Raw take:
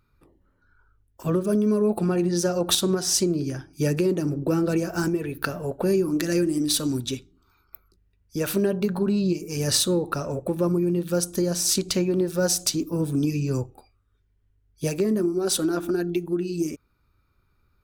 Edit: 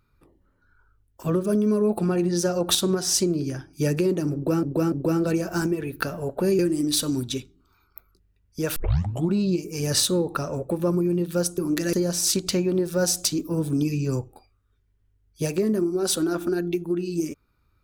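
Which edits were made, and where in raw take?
4.34–4.63 loop, 3 plays
6.01–6.36 move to 11.35
8.53 tape start 0.58 s

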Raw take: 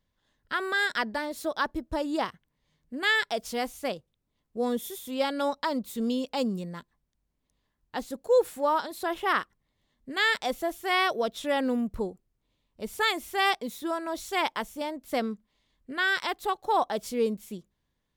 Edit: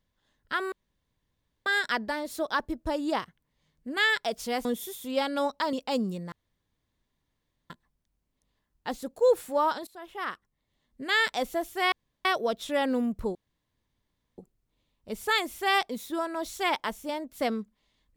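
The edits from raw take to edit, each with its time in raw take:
0.72 insert room tone 0.94 s
3.71–4.68 cut
5.76–6.19 cut
6.78 insert room tone 1.38 s
8.95–10.12 fade in, from -20.5 dB
11 insert room tone 0.33 s
12.1 insert room tone 1.03 s

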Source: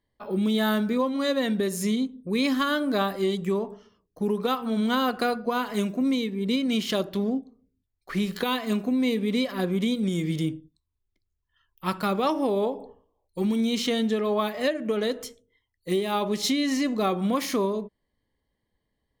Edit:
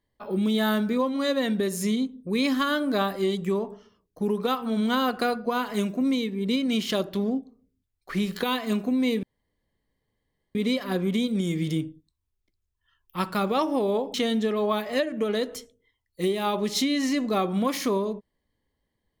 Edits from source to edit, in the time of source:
9.23 insert room tone 1.32 s
12.82–13.82 cut

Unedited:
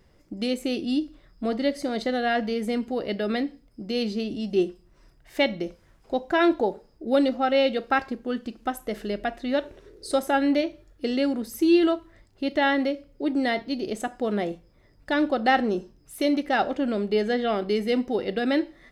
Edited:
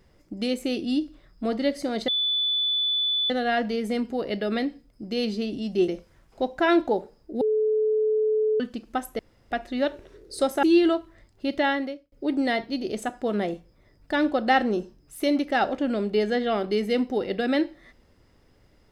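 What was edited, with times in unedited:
2.08 add tone 3480 Hz -21.5 dBFS 1.22 s
4.66–5.6 cut
7.13–8.32 bleep 432 Hz -19.5 dBFS
8.91–9.23 room tone
10.35–11.61 cut
12.56–13.1 fade out

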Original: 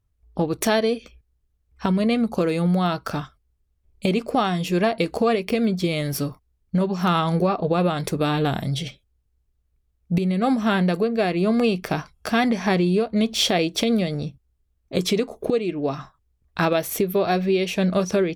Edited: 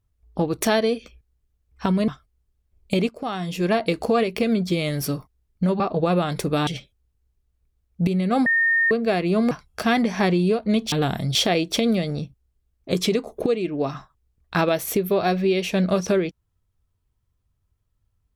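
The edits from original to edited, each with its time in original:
2.08–3.2 cut
4.21–4.89 fade in, from -14.5 dB
6.92–7.48 cut
8.35–8.78 move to 13.39
10.57–11.02 bleep 1830 Hz -16 dBFS
11.62–11.98 cut

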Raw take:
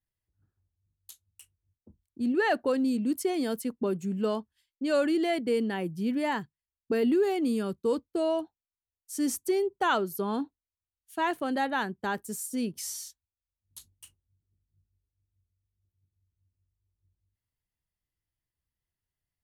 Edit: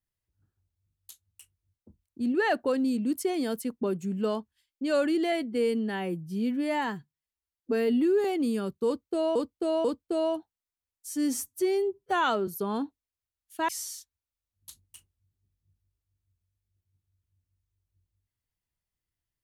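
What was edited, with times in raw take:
5.32–7.27 stretch 1.5×
7.89–8.38 loop, 3 plays
9.14–10.06 stretch 1.5×
11.27–12.77 cut

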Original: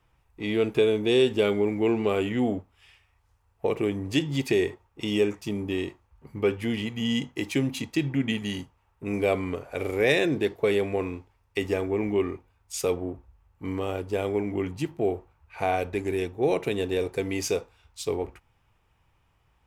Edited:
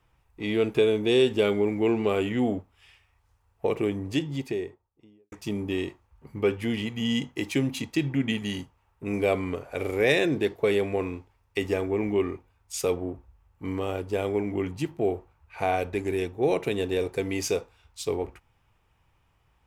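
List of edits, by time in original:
3.72–5.32 studio fade out

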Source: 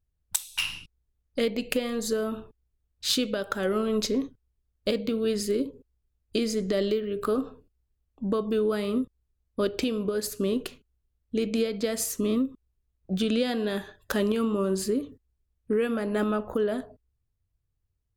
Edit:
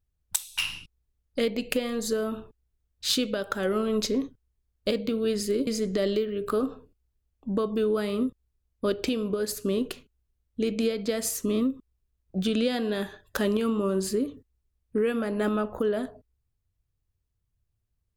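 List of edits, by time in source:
5.67–6.42 cut

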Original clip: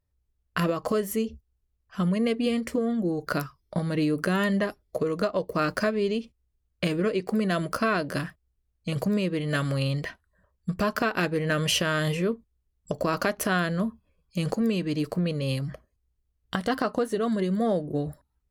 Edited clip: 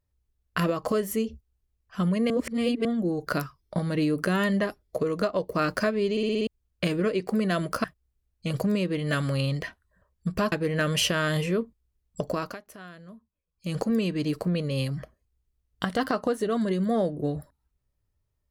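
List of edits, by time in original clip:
2.3–2.85 reverse
6.11 stutter in place 0.06 s, 6 plays
7.84–8.26 cut
10.94–11.23 cut
12.96–14.53 dip -19.5 dB, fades 0.34 s

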